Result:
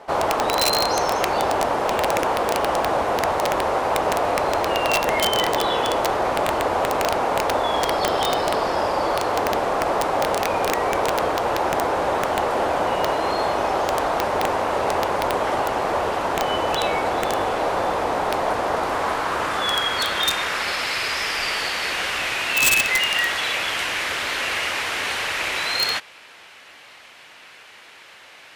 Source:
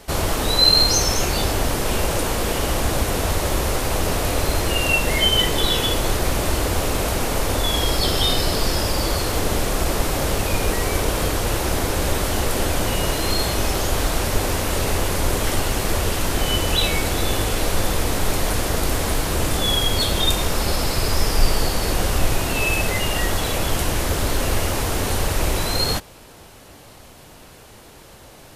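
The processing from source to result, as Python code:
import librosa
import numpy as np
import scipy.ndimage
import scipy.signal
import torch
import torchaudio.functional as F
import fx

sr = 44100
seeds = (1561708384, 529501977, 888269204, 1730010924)

y = fx.filter_sweep_bandpass(x, sr, from_hz=830.0, to_hz=2200.0, start_s=18.58, end_s=20.94, q=1.5)
y = (np.mod(10.0 ** (19.5 / 20.0) * y + 1.0, 2.0) - 1.0) / 10.0 ** (19.5 / 20.0)
y = y * 10.0 ** (8.5 / 20.0)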